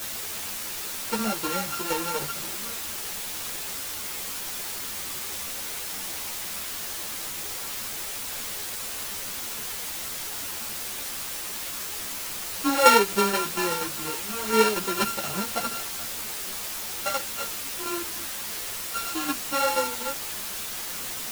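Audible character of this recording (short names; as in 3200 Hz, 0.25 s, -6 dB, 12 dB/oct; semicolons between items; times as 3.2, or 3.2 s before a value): a buzz of ramps at a fixed pitch in blocks of 32 samples; tremolo saw down 4.2 Hz, depth 65%; a quantiser's noise floor 6-bit, dither triangular; a shimmering, thickened sound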